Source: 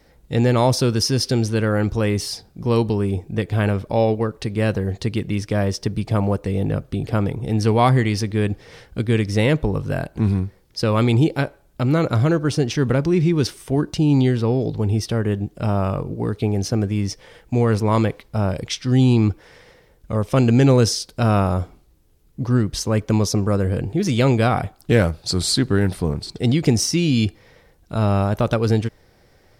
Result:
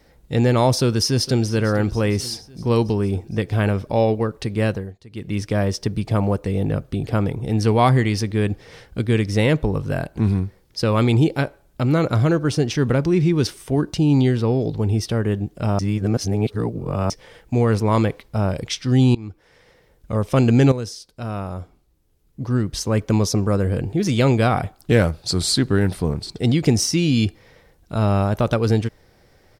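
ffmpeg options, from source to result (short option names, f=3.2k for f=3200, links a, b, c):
-filter_complex "[0:a]asplit=2[a][b];[b]afade=t=in:st=0.7:d=0.01,afade=t=out:st=1.45:d=0.01,aecho=0:1:460|920|1380|1840|2300|2760:0.141254|0.0847523|0.0508514|0.0305108|0.0183065|0.0109839[c];[a][c]amix=inputs=2:normalize=0,asplit=7[d][e][f][g][h][i][j];[d]atrim=end=4.95,asetpts=PTS-STARTPTS,afade=t=out:st=4.65:d=0.3:silence=0.0891251[k];[e]atrim=start=4.95:end=5.09,asetpts=PTS-STARTPTS,volume=-21dB[l];[f]atrim=start=5.09:end=15.792,asetpts=PTS-STARTPTS,afade=t=in:d=0.3:silence=0.0891251[m];[g]atrim=start=15.788:end=17.102,asetpts=PTS-STARTPTS,areverse[n];[h]atrim=start=17.098:end=19.15,asetpts=PTS-STARTPTS,afade=t=out:st=2.048:d=0.004:c=hsin:silence=0.0707946[o];[i]atrim=start=19.15:end=20.72,asetpts=PTS-STARTPTS,afade=t=in:d=1.01:silence=0.0707946,afade=t=out:st=1.566:d=0.004:c=hsin:silence=0.237137[p];[j]atrim=start=20.72,asetpts=PTS-STARTPTS,afade=t=in:d=2.25:c=qua:silence=0.237137[q];[k][l][m]concat=n=3:v=0:a=1[r];[r][n]acrossfade=d=0.004:c1=hsin:c2=hsin[s];[o][p][q]concat=n=3:v=0:a=1[t];[s][t]acrossfade=d=0.004:c1=hsin:c2=hsin"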